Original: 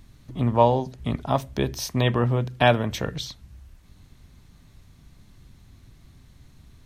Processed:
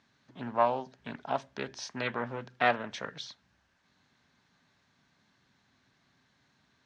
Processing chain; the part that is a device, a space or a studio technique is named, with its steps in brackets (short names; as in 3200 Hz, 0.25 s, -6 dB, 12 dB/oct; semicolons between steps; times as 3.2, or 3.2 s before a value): full-range speaker at full volume (Doppler distortion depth 0.37 ms; speaker cabinet 280–6300 Hz, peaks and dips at 330 Hz -6 dB, 470 Hz -3 dB, 880 Hz +3 dB, 1600 Hz +8 dB); gain -8 dB